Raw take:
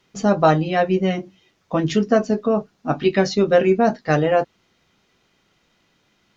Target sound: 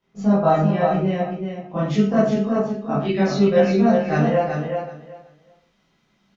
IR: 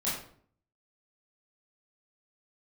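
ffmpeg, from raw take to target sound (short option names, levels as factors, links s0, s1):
-filter_complex "[0:a]asetnsamples=n=441:p=0,asendcmd='1.76 highshelf g -3',highshelf=f=2400:g=-11,aecho=1:1:376|752|1128:0.501|0.0902|0.0162[s0];[1:a]atrim=start_sample=2205,afade=t=out:st=0.24:d=0.01,atrim=end_sample=11025[s1];[s0][s1]afir=irnorm=-1:irlink=0,volume=0.355"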